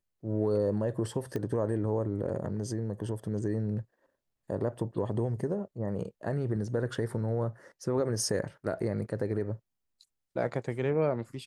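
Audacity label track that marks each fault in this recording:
1.360000	1.360000	pop -22 dBFS

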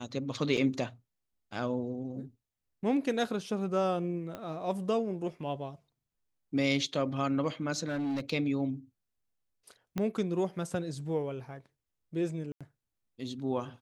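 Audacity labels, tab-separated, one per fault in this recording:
0.570000	0.570000	gap 3.2 ms
4.350000	4.350000	pop -25 dBFS
7.870000	8.300000	clipped -29.5 dBFS
9.980000	9.980000	pop -19 dBFS
12.520000	12.610000	gap 86 ms

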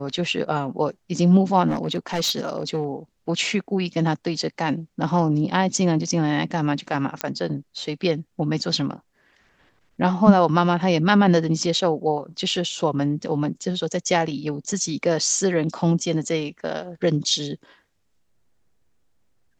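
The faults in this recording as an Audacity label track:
1.670000	2.850000	clipped -18.5 dBFS
7.210000	7.210000	pop -7 dBFS

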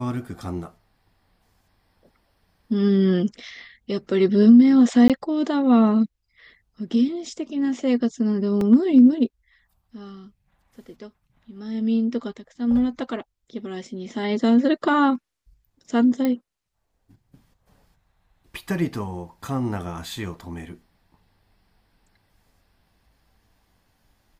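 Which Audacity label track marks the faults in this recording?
5.080000	5.100000	gap 17 ms
8.610000	8.610000	gap 2.3 ms
16.250000	16.250000	pop -12 dBFS

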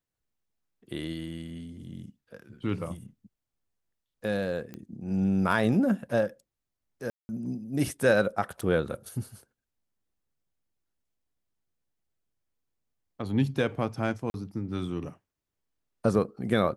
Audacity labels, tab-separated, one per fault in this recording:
4.740000	4.740000	pop -26 dBFS
7.100000	7.290000	gap 0.19 s
8.610000	8.620000	gap 5.5 ms
14.300000	14.340000	gap 41 ms

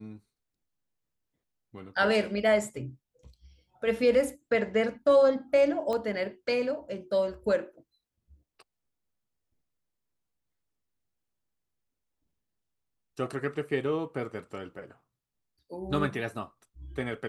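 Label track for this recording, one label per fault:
5.930000	5.930000	pop -20 dBFS

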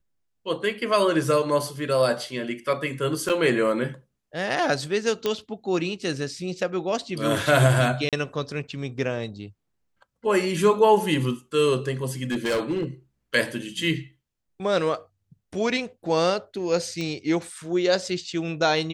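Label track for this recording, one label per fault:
3.290000	3.300000	gap 7.2 ms
5.260000	5.260000	pop -11 dBFS
8.090000	8.130000	gap 37 ms
12.310000	12.850000	clipped -20.5 dBFS
17.010000	17.010000	pop -18 dBFS

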